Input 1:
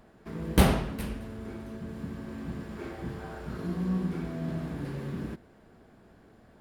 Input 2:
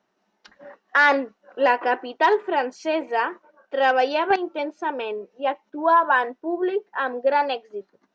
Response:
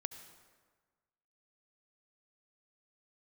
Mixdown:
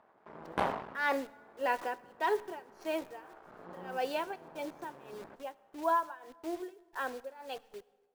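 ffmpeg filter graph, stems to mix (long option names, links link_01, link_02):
-filter_complex "[0:a]aeval=exprs='max(val(0),0)':channel_layout=same,bandpass=frequency=930:width_type=q:width=1.5:csg=0,volume=1.5dB,asplit=2[link_01][link_02];[link_02]volume=-12dB[link_03];[1:a]acrusher=bits=7:dc=4:mix=0:aa=0.000001,tremolo=f=1.7:d=0.94,volume=-13dB,asplit=3[link_04][link_05][link_06];[link_05]volume=-8.5dB[link_07];[link_06]apad=whole_len=291315[link_08];[link_01][link_08]sidechaincompress=threshold=-47dB:ratio=8:attack=16:release=953[link_09];[2:a]atrim=start_sample=2205[link_10];[link_03][link_07]amix=inputs=2:normalize=0[link_11];[link_11][link_10]afir=irnorm=-1:irlink=0[link_12];[link_09][link_04][link_12]amix=inputs=3:normalize=0"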